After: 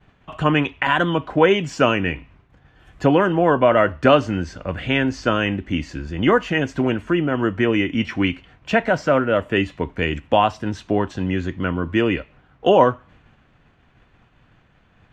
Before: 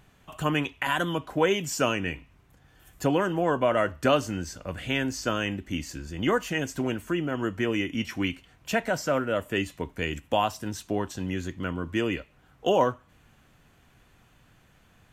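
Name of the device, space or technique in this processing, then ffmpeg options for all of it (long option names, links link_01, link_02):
hearing-loss simulation: -af "lowpass=3100,agate=range=-33dB:threshold=-54dB:ratio=3:detection=peak,volume=8.5dB"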